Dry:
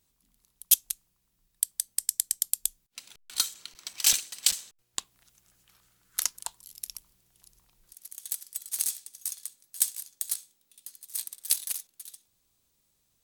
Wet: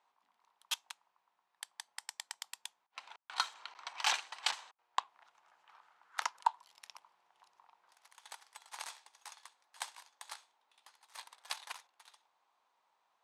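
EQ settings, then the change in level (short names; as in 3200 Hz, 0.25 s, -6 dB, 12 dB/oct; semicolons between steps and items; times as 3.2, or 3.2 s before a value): ladder band-pass 1000 Hz, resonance 60%; +18.0 dB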